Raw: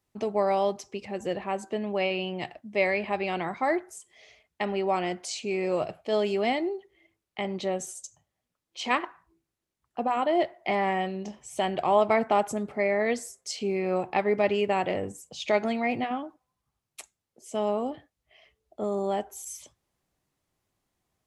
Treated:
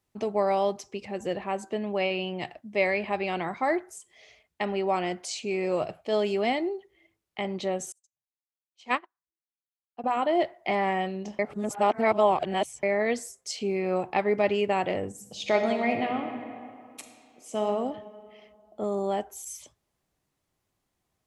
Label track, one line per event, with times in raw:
7.920000	10.040000	upward expansion 2.5:1, over -47 dBFS
11.390000	12.830000	reverse
15.090000	17.630000	reverb throw, RT60 2.4 s, DRR 4.5 dB

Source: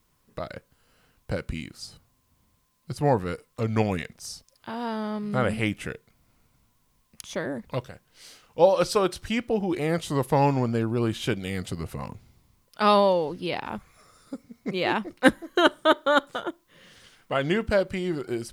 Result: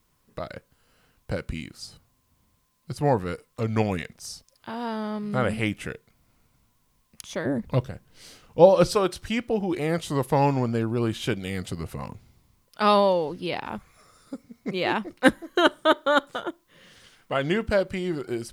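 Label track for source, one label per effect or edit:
7.450000	8.950000	bass shelf 410 Hz +10 dB

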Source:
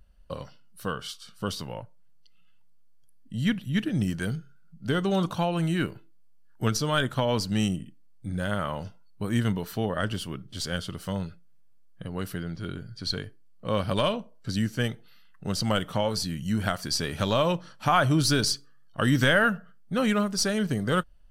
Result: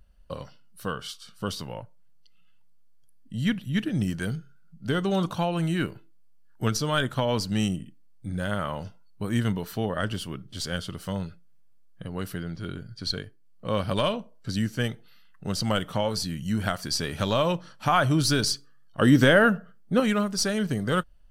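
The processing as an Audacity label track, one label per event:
12.790000	13.670000	transient shaper attack +1 dB, sustain -4 dB
19.000000	20.000000	peaking EQ 360 Hz +7.5 dB 2.1 oct

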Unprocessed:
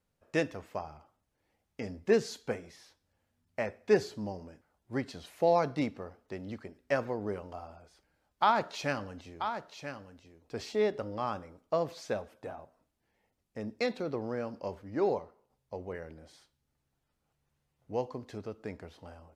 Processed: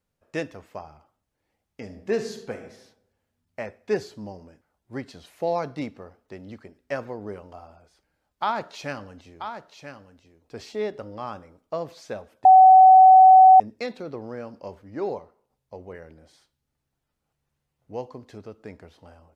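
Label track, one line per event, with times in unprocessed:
1.840000	2.650000	reverb throw, RT60 0.81 s, DRR 6 dB
12.450000	13.600000	bleep 754 Hz -7.5 dBFS

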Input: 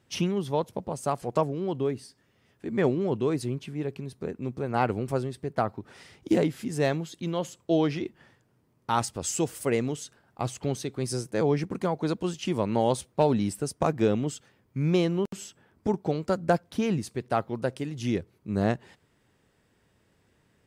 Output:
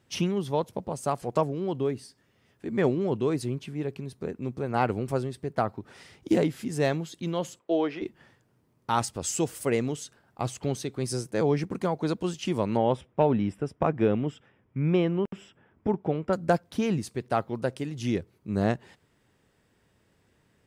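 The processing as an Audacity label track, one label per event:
7.590000	8.020000	three-band isolator lows -23 dB, under 260 Hz, highs -14 dB, over 3.2 kHz
12.770000	16.330000	Savitzky-Golay filter over 25 samples

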